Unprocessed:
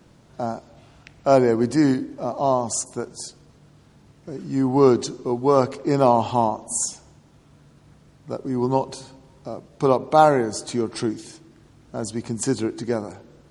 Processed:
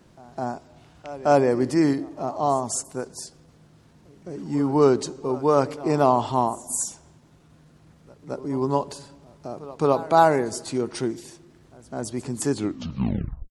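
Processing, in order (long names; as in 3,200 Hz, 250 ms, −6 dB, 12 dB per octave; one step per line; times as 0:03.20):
turntable brake at the end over 0.97 s
echo ahead of the sound 212 ms −19 dB
pitch shifter +1 semitone
level −2 dB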